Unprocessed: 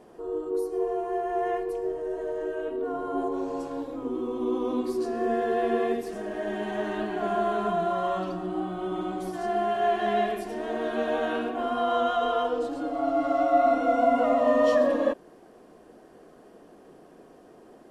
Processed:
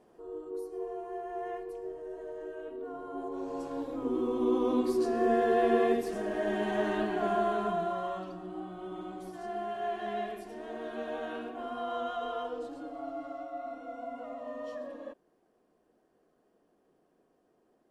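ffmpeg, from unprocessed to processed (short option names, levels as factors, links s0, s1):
-af "afade=t=in:st=3.22:d=0.96:silence=0.316228,afade=t=out:st=6.88:d=1.38:silence=0.316228,afade=t=out:st=12.71:d=0.8:silence=0.354813"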